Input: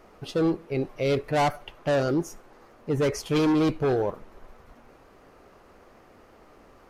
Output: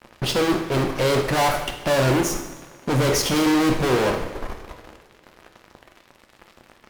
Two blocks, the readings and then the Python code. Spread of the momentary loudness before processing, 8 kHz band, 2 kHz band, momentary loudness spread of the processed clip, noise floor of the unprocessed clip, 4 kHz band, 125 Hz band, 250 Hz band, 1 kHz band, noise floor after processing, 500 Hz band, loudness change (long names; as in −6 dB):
9 LU, +14.5 dB, +9.5 dB, 14 LU, −55 dBFS, +11.5 dB, +6.0 dB, +4.0 dB, +6.5 dB, −56 dBFS, +3.5 dB, +5.0 dB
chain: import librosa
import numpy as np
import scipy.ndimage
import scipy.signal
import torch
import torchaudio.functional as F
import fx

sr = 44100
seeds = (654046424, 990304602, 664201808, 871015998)

y = fx.fuzz(x, sr, gain_db=39.0, gate_db=-47.0)
y = fx.rev_double_slope(y, sr, seeds[0], early_s=0.86, late_s=3.0, knee_db=-19, drr_db=4.0)
y = y * librosa.db_to_amplitude(-6.0)